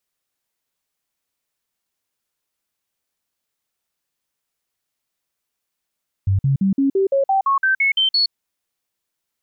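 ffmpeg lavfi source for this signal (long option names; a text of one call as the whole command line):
ffmpeg -f lavfi -i "aevalsrc='0.211*clip(min(mod(t,0.17),0.12-mod(t,0.17))/0.005,0,1)*sin(2*PI*97*pow(2,floor(t/0.17)/2)*mod(t,0.17))':duration=2.04:sample_rate=44100" out.wav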